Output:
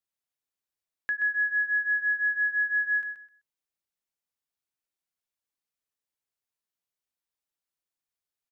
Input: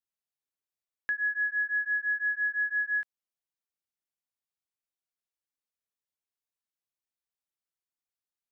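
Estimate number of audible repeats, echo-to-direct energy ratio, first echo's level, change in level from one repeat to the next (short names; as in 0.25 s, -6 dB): 2, -9.0 dB, -9.0 dB, -13.5 dB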